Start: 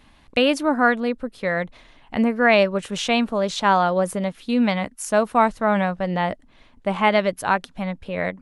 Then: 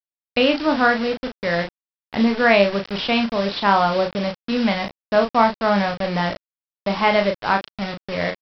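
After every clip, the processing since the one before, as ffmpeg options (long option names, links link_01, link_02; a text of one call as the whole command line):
ffmpeg -i in.wav -filter_complex "[0:a]aresample=11025,acrusher=bits=4:mix=0:aa=0.000001,aresample=44100,asplit=2[link_01][link_02];[link_02]adelay=35,volume=-5.5dB[link_03];[link_01][link_03]amix=inputs=2:normalize=0" out.wav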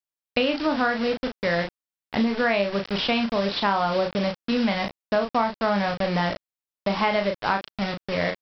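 ffmpeg -i in.wav -af "acompressor=threshold=-19dB:ratio=5" out.wav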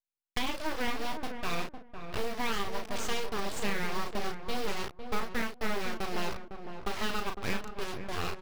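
ffmpeg -i in.wav -filter_complex "[0:a]aeval=exprs='abs(val(0))':channel_layout=same,acrusher=bits=5:mode=log:mix=0:aa=0.000001,asplit=2[link_01][link_02];[link_02]adelay=506,lowpass=frequency=1100:poles=1,volume=-7dB,asplit=2[link_03][link_04];[link_04]adelay=506,lowpass=frequency=1100:poles=1,volume=0.18,asplit=2[link_05][link_06];[link_06]adelay=506,lowpass=frequency=1100:poles=1,volume=0.18[link_07];[link_01][link_03][link_05][link_07]amix=inputs=4:normalize=0,volume=-7.5dB" out.wav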